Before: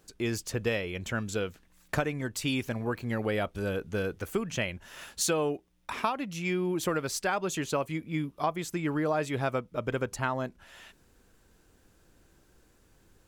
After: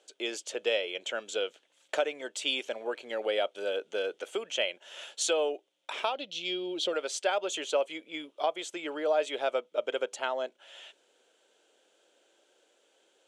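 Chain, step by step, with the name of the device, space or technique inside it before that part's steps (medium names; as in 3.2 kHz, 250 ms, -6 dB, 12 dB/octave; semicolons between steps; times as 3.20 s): 6.14–6.93 s: ten-band graphic EQ 125 Hz +11 dB, 1 kHz -7 dB, 2 kHz -9 dB, 4 kHz +12 dB, 8 kHz -7 dB, 16 kHz -5 dB; phone speaker on a table (cabinet simulation 400–8500 Hz, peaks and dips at 580 Hz +6 dB, 1.1 kHz -8 dB, 1.8 kHz -5 dB, 3.2 kHz +10 dB, 5 kHz -5 dB)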